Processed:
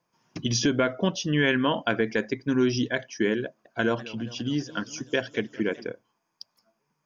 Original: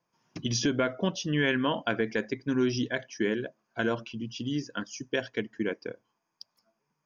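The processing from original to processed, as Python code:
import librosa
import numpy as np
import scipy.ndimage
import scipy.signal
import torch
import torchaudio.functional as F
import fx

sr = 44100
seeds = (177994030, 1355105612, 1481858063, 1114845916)

y = fx.echo_warbled(x, sr, ms=201, feedback_pct=70, rate_hz=2.8, cents=189, wet_db=-19, at=(3.45, 5.85))
y = y * librosa.db_to_amplitude(3.5)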